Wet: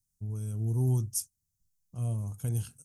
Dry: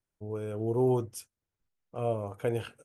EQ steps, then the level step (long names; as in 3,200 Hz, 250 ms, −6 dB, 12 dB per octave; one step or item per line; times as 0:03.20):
drawn EQ curve 160 Hz 0 dB, 520 Hz −27 dB, 820 Hz −20 dB, 2,400 Hz −21 dB, 6,300 Hz +5 dB
+6.5 dB